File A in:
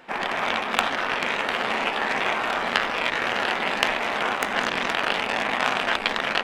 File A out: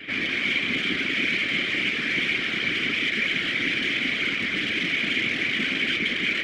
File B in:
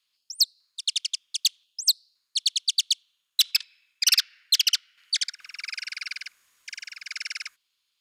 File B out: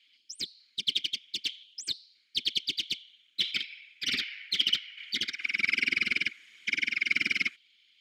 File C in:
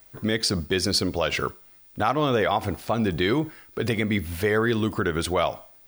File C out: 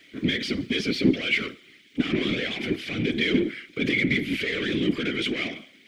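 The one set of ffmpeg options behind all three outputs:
-filter_complex "[0:a]asplit=2[s0][s1];[s1]highpass=f=720:p=1,volume=44.7,asoftclip=type=tanh:threshold=0.891[s2];[s0][s2]amix=inputs=2:normalize=0,lowpass=f=6600:p=1,volume=0.501,acontrast=55,asplit=3[s3][s4][s5];[s3]bandpass=f=270:t=q:w=8,volume=1[s6];[s4]bandpass=f=2290:t=q:w=8,volume=0.501[s7];[s5]bandpass=f=3010:t=q:w=8,volume=0.355[s8];[s6][s7][s8]amix=inputs=3:normalize=0,afftfilt=real='hypot(re,im)*cos(2*PI*random(0))':imag='hypot(re,im)*sin(2*PI*random(1))':win_size=512:overlap=0.75"

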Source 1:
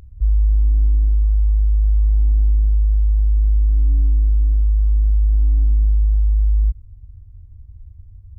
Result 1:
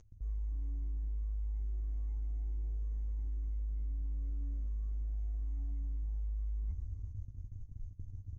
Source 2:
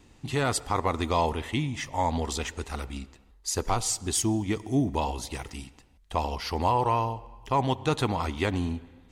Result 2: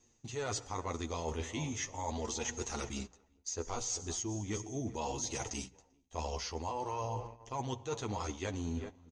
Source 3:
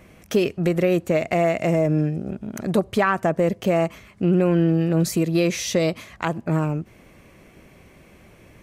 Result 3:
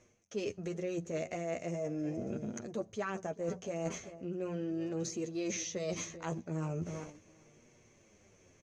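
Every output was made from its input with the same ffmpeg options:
-filter_complex "[0:a]lowpass=f=6400:t=q:w=12,equalizer=f=110:t=o:w=0.26:g=2,asplit=2[s0][s1];[s1]adelay=392,lowpass=f=1600:p=1,volume=0.126,asplit=2[s2][s3];[s3]adelay=392,lowpass=f=1600:p=1,volume=0.4,asplit=2[s4][s5];[s5]adelay=392,lowpass=f=1600:p=1,volume=0.4[s6];[s2][s4][s6]amix=inputs=3:normalize=0[s7];[s0][s7]amix=inputs=2:normalize=0,acrossover=split=3900[s8][s9];[s9]acompressor=threshold=0.0316:ratio=4:attack=1:release=60[s10];[s8][s10]amix=inputs=2:normalize=0,equalizer=f=450:t=o:w=0.8:g=5,flanger=delay=8.4:depth=4:regen=19:speed=0.39:shape=sinusoidal,agate=range=0.2:threshold=0.00794:ratio=16:detection=peak,areverse,acompressor=threshold=0.0178:ratio=12,areverse,bandreject=f=60:t=h:w=6,bandreject=f=120:t=h:w=6,bandreject=f=180:t=h:w=6,volume=1.12"

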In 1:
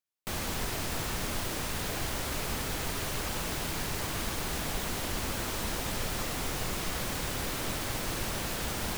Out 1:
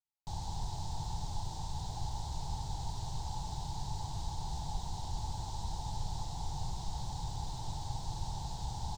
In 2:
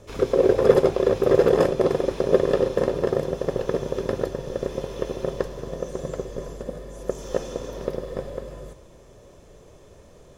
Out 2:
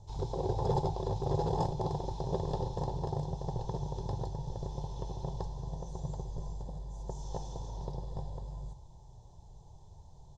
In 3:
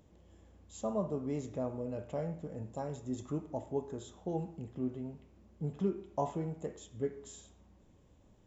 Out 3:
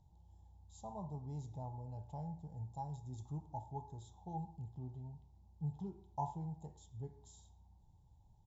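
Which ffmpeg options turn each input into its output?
-af "firequalizer=gain_entry='entry(140,0);entry(230,-18);entry(370,-17);entry(560,-21);entry(860,4);entry(1200,-25);entry(2400,-28);entry(3800,-8);entry(7500,-11);entry(11000,-30)':delay=0.05:min_phase=1"

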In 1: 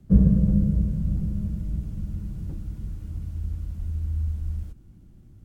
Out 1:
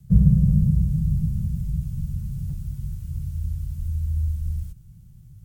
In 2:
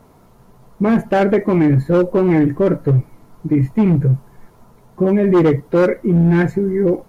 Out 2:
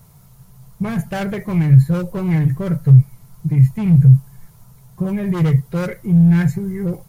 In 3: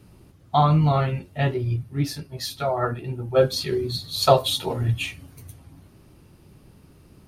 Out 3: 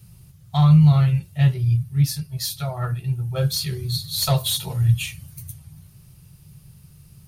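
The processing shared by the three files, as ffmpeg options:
-af "crystalizer=i=6.5:c=0,acontrast=36,lowshelf=f=200:t=q:w=3:g=10.5,volume=0.178"

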